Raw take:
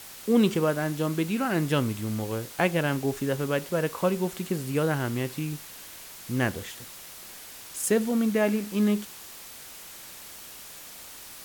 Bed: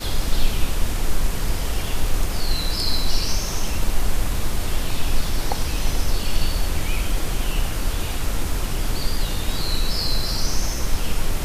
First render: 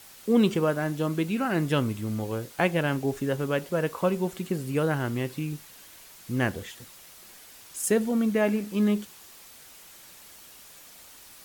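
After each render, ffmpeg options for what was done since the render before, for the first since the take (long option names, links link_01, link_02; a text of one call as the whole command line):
ffmpeg -i in.wav -af "afftdn=noise_reduction=6:noise_floor=-44" out.wav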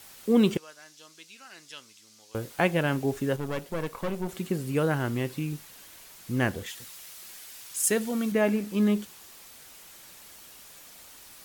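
ffmpeg -i in.wav -filter_complex "[0:a]asettb=1/sr,asplit=3[link_01][link_02][link_03];[link_01]atrim=end=0.574[link_04];[link_02]atrim=start=0.57:end=2.35,asetpts=PTS-STARTPTS,afade=type=in:duration=0.004:curve=qsin,afade=type=out:start_time=1.776:duration=0.004:curve=qsin,bandpass=frequency=5500:width_type=q:width=2[link_05];[link_03]atrim=start=2.346[link_06];[link_04][link_05]acrossfade=duration=0.004:curve1=hsin:curve2=qsin[link_07];[link_07][link_06]acrossfade=duration=0.004:curve1=qsin:curve2=hsin,asettb=1/sr,asplit=3[link_08][link_09][link_10];[link_08]atrim=end=3.364[link_11];[link_09]atrim=start=3.36:end=4.29,asetpts=PTS-STARTPTS,afade=type=in:duration=0.004:curve=qsin,afade=type=out:start_time=0.926:duration=0.004:curve=qsin,aeval=exprs='(tanh(20*val(0)+0.75)-tanh(0.75))/20':channel_layout=same[link_12];[link_10]atrim=start=4.286[link_13];[link_11][link_12]acrossfade=duration=0.004:curve1=hsin:curve2=qsin[link_14];[link_14][link_13]acrossfade=duration=0.004:curve1=qsin:curve2=hsin,asettb=1/sr,asplit=3[link_15][link_16][link_17];[link_15]atrim=end=6.664[link_18];[link_16]atrim=start=6.66:end=8.32,asetpts=PTS-STARTPTS,afade=type=in:duration=0.004:curve=qsin,afade=type=out:start_time=1.656:duration=0.004:curve=qsin,tiltshelf=frequency=1200:gain=-4.5[link_19];[link_17]atrim=start=8.316[link_20];[link_18][link_19]acrossfade=duration=0.004:curve1=hsin:curve2=qsin[link_21];[link_21][link_20]acrossfade=duration=0.004:curve1=qsin:curve2=hsin" out.wav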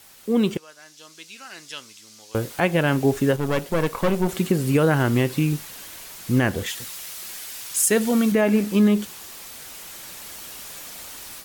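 ffmpeg -i in.wav -af "dynaudnorm=framelen=670:gausssize=3:maxgain=11.5dB,alimiter=limit=-9dB:level=0:latency=1:release=142" out.wav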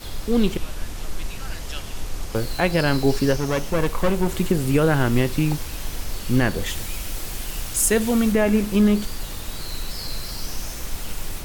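ffmpeg -i in.wav -i bed.wav -filter_complex "[1:a]volume=-8.5dB[link_01];[0:a][link_01]amix=inputs=2:normalize=0" out.wav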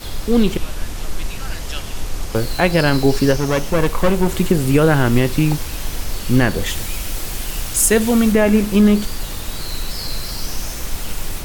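ffmpeg -i in.wav -af "volume=5dB,alimiter=limit=-3dB:level=0:latency=1" out.wav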